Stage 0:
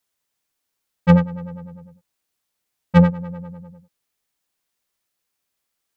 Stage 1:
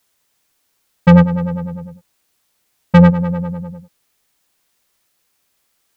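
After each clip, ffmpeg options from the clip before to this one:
ffmpeg -i in.wav -af "alimiter=level_in=13dB:limit=-1dB:release=50:level=0:latency=1,volume=-1dB" out.wav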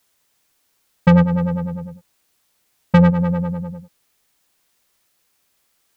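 ffmpeg -i in.wav -af "acompressor=threshold=-9dB:ratio=6" out.wav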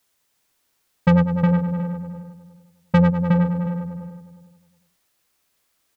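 ffmpeg -i in.wav -filter_complex "[0:a]asplit=2[link_01][link_02];[link_02]adelay=362,lowpass=frequency=2400:poles=1,volume=-4.5dB,asplit=2[link_03][link_04];[link_04]adelay=362,lowpass=frequency=2400:poles=1,volume=0.22,asplit=2[link_05][link_06];[link_06]adelay=362,lowpass=frequency=2400:poles=1,volume=0.22[link_07];[link_01][link_03][link_05][link_07]amix=inputs=4:normalize=0,volume=-3.5dB" out.wav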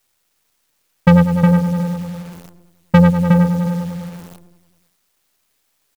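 ffmpeg -i in.wav -af "acrusher=bits=8:dc=4:mix=0:aa=0.000001,volume=5.5dB" out.wav

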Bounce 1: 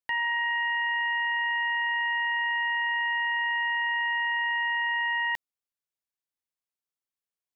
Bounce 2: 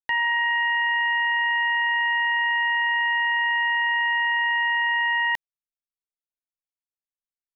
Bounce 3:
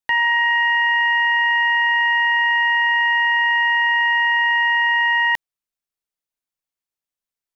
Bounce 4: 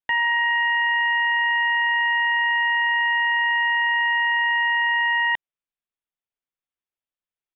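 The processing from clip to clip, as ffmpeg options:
ffmpeg -i in.wav -af "anlmdn=0.631,volume=5dB" out.wav
ffmpeg -i in.wav -af "acontrast=38" out.wav
ffmpeg -i in.wav -af "aresample=8000,aresample=44100,volume=-3.5dB" out.wav

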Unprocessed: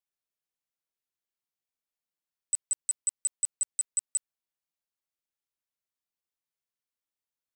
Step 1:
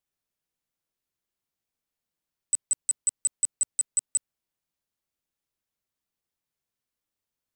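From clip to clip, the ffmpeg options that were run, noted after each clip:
ffmpeg -i in.wav -af "lowshelf=frequency=380:gain=8,volume=3.5dB" out.wav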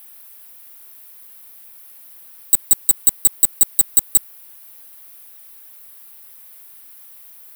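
ffmpeg -i in.wav -filter_complex "[0:a]asplit=2[link_01][link_02];[link_02]highpass=frequency=720:poles=1,volume=33dB,asoftclip=type=tanh:threshold=-17.5dB[link_03];[link_01][link_03]amix=inputs=2:normalize=0,lowpass=frequency=4000:poles=1,volume=-6dB,aexciter=amount=12.5:drive=3.1:freq=9600,volume=8.5dB" out.wav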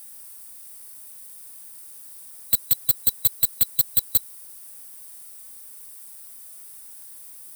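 ffmpeg -i in.wav -af "afftfilt=real='real(if(lt(b,736),b+184*(1-2*mod(floor(b/184),2)),b),0)':imag='imag(if(lt(b,736),b+184*(1-2*mod(floor(b/184),2)),b),0)':win_size=2048:overlap=0.75,asoftclip=type=tanh:threshold=-11.5dB" out.wav

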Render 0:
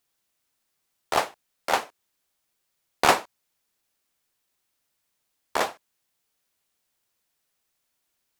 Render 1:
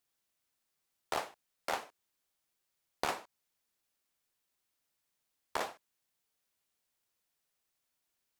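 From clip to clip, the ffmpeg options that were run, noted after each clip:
ffmpeg -i in.wav -af "acompressor=threshold=-24dB:ratio=10,volume=-6.5dB" out.wav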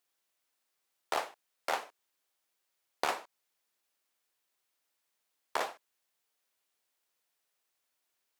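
ffmpeg -i in.wav -af "bass=frequency=250:gain=-12,treble=frequency=4000:gain=-2,volume=3dB" out.wav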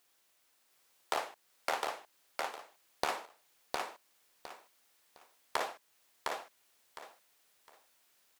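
ffmpeg -i in.wav -af "acompressor=threshold=-49dB:ratio=2,aecho=1:1:709|1418|2127:0.708|0.17|0.0408,volume=9.5dB" out.wav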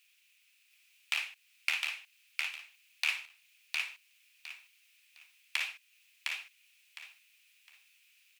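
ffmpeg -i in.wav -af "highpass=frequency=2500:width_type=q:width=6.5" out.wav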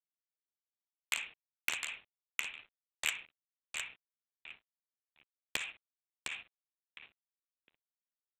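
ffmpeg -i in.wav -af "aresample=8000,aeval=exprs='sgn(val(0))*max(abs(val(0))-0.002,0)':channel_layout=same,aresample=44100,aeval=exprs='0.211*(cos(1*acos(clip(val(0)/0.211,-1,1)))-cos(1*PI/2))+0.0596*(cos(7*acos(clip(val(0)/0.211,-1,1)))-cos(7*PI/2))':channel_layout=same,volume=-1dB" out.wav

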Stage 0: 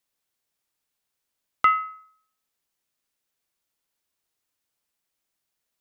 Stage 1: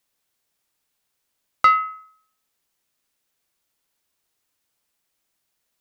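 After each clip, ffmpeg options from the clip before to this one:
ffmpeg -i in.wav -af "asoftclip=type=tanh:threshold=-11dB,volume=5.5dB" out.wav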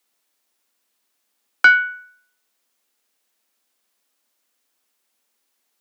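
ffmpeg -i in.wav -af "afreqshift=200,volume=3.5dB" out.wav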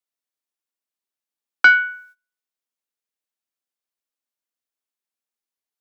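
ffmpeg -i in.wav -af "agate=range=-19dB:threshold=-47dB:ratio=16:detection=peak" out.wav

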